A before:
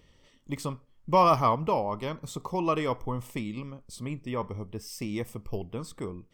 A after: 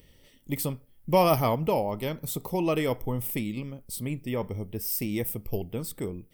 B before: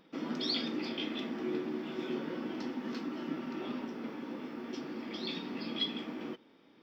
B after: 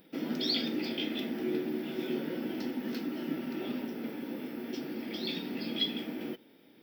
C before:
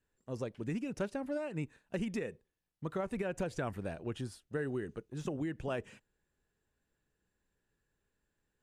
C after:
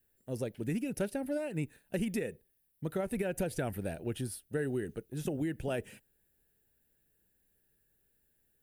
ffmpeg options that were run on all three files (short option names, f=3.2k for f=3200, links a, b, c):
-af "equalizer=f=1.1k:t=o:w=0.44:g=-13,aexciter=amount=7.9:drive=3.9:freq=9.5k,volume=3dB"